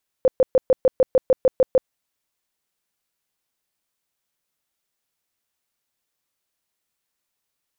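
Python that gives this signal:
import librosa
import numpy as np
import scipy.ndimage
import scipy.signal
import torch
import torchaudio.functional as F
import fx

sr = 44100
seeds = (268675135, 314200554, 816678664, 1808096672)

y = fx.tone_burst(sr, hz=517.0, cycles=15, every_s=0.15, bursts=11, level_db=-11.0)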